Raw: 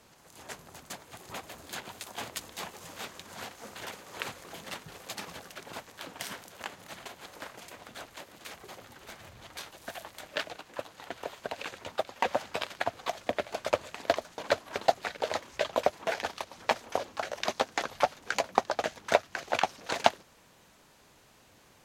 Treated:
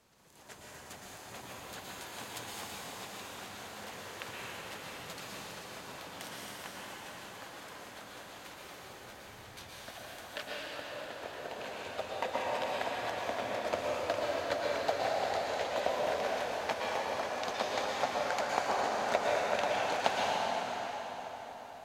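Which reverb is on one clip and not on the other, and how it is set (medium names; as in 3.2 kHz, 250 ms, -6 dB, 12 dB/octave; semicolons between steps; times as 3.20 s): plate-style reverb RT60 5 s, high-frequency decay 0.75×, pre-delay 100 ms, DRR -6 dB; trim -8.5 dB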